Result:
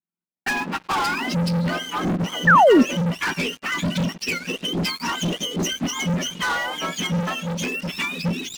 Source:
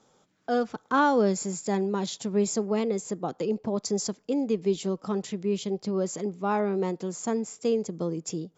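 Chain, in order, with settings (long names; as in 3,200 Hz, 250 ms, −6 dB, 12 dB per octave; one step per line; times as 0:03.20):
frequency axis turned over on the octave scale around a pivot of 1,100 Hz
camcorder AGC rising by 20 dB per second
noise gate −50 dBFS, range −28 dB
0:04.02–0:05.79: downward compressor 6 to 1, threshold −29 dBFS, peak gain reduction 8 dB
high-shelf EQ 3,600 Hz +8 dB
brickwall limiter −19 dBFS, peak gain reduction 7.5 dB
treble cut that deepens with the level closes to 1,100 Hz, closed at −24.5 dBFS
multiband delay without the direct sound lows, highs 570 ms, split 3,300 Hz
leveller curve on the samples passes 5
0:02.47–0:02.83: sound drawn into the spectrogram fall 220–1,900 Hz −12 dBFS
0:07.20–0:07.89: parametric band 130 Hz −7 dB 1.6 octaves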